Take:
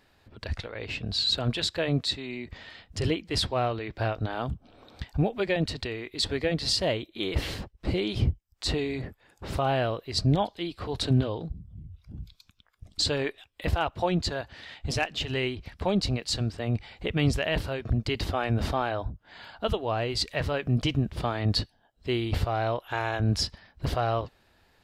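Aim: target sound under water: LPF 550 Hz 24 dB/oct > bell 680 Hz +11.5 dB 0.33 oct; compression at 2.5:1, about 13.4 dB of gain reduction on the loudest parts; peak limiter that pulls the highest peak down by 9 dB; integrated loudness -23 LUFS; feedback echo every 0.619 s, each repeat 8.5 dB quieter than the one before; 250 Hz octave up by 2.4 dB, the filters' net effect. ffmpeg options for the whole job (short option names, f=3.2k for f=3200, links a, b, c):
-af "equalizer=f=250:t=o:g=3,acompressor=threshold=-39dB:ratio=2.5,alimiter=level_in=7dB:limit=-24dB:level=0:latency=1,volume=-7dB,lowpass=f=550:w=0.5412,lowpass=f=550:w=1.3066,equalizer=f=680:t=o:w=0.33:g=11.5,aecho=1:1:619|1238|1857|2476:0.376|0.143|0.0543|0.0206,volume=20dB"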